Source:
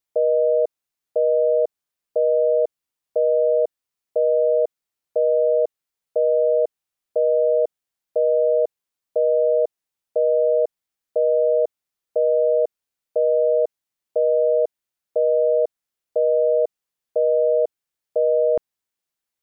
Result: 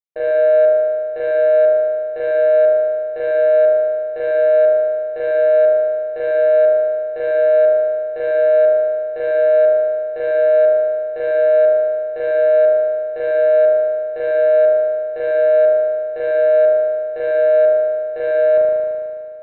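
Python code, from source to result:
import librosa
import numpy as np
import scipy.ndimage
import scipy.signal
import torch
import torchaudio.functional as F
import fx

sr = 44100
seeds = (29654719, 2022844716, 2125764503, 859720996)

y = fx.hum_notches(x, sr, base_hz=50, count=9)
y = fx.cheby_harmonics(y, sr, harmonics=(2, 3, 4, 7), levels_db=(-30, -15, -27, -32), full_scale_db=-11.5)
y = fx.rev_spring(y, sr, rt60_s=2.1, pass_ms=(37,), chirp_ms=45, drr_db=-7.0)
y = y * librosa.db_to_amplitude(-6.0)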